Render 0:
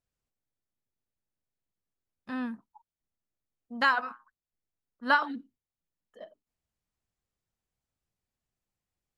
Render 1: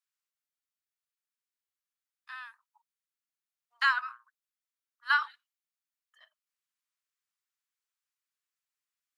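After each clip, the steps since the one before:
Butterworth high-pass 1,100 Hz 36 dB per octave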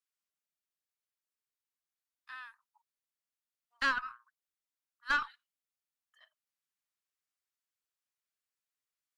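tube saturation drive 20 dB, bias 0.45
level −1.5 dB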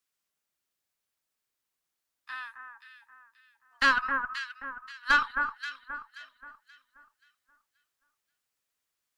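delay that swaps between a low-pass and a high-pass 265 ms, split 1,700 Hz, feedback 57%, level −5 dB
level +7.5 dB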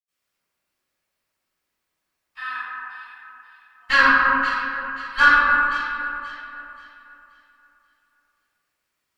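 convolution reverb RT60 1.8 s, pre-delay 76 ms
level +7.5 dB

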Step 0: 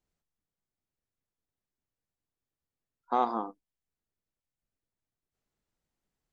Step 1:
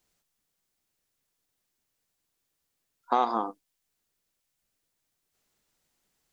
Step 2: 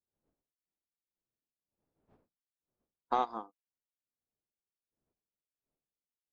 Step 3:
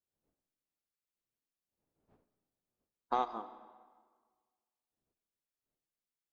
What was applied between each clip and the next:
high-shelf EQ 2,300 Hz +7.5 dB; downward compressor 2 to 1, threshold −32 dBFS, peak gain reduction 7 dB; low-shelf EQ 180 Hz −7.5 dB; level +8 dB
wind on the microphone 460 Hz −50 dBFS; mains-hum notches 60/120/180/240 Hz; expander for the loud parts 2.5 to 1, over −51 dBFS; level −3.5 dB
convolution reverb RT60 1.6 s, pre-delay 60 ms, DRR 13.5 dB; level −2 dB

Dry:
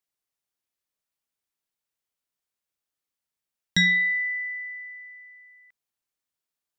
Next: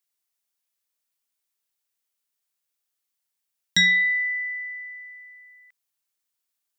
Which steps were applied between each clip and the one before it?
spectral tilt +2 dB per octave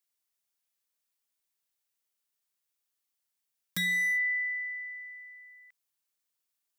downward compressor 16 to 1, threshold −22 dBFS, peak gain reduction 8 dB
wave folding −22.5 dBFS
level −2.5 dB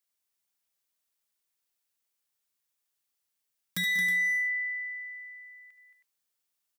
multi-tap delay 70/75/190/222/319 ms −12.5/−13/−14/−7.5/−10.5 dB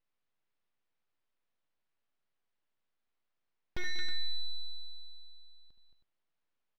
full-wave rectification
high-frequency loss of the air 260 metres
level +1.5 dB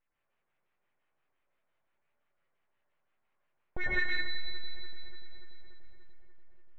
auto-filter low-pass sine 5.8 Hz 610–2,600 Hz
feedback echo with a low-pass in the loop 291 ms, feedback 75%, low-pass 2,600 Hz, level −15 dB
convolution reverb, pre-delay 95 ms, DRR −5.5 dB

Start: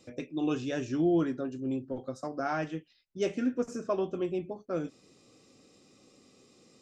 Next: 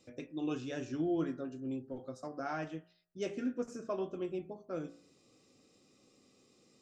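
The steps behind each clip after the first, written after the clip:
hum removal 57.34 Hz, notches 34
level −6 dB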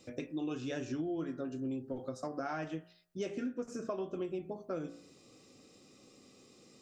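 downward compressor 6 to 1, threshold −41 dBFS, peak gain reduction 11.5 dB
level +6.5 dB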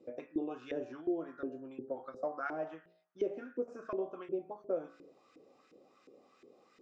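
auto-filter band-pass saw up 2.8 Hz 350–1,800 Hz
level +7 dB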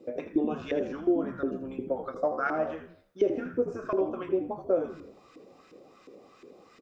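echo with shifted repeats 80 ms, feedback 38%, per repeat −74 Hz, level −10.5 dB
level +9 dB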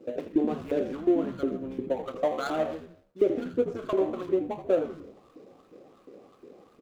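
running median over 25 samples
level +2 dB

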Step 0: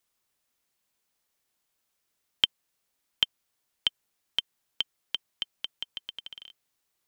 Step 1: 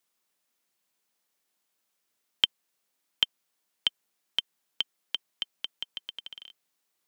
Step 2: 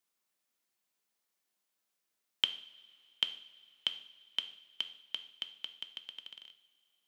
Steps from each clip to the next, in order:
high-pass filter 150 Hz 24 dB per octave
coupled-rooms reverb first 0.59 s, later 3.2 s, from −18 dB, DRR 8.5 dB; level −6 dB

